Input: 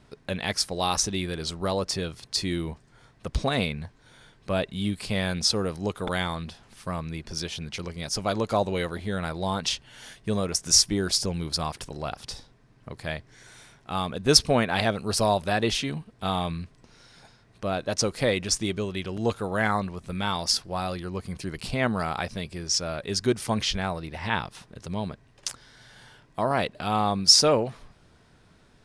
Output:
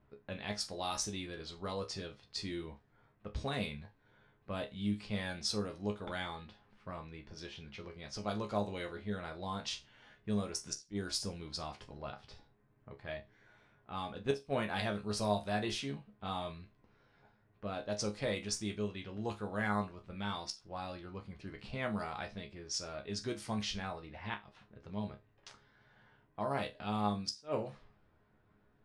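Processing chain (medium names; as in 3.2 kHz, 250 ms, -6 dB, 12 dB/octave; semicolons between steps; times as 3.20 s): inverted gate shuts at -9 dBFS, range -28 dB; level-controlled noise filter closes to 1.8 kHz, open at -20 dBFS; chord resonator C#2 fifth, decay 0.22 s; trim -3 dB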